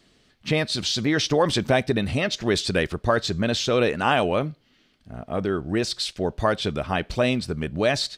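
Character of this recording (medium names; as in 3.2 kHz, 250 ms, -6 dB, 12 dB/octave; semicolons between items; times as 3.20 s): noise floor -62 dBFS; spectral tilt -4.5 dB/octave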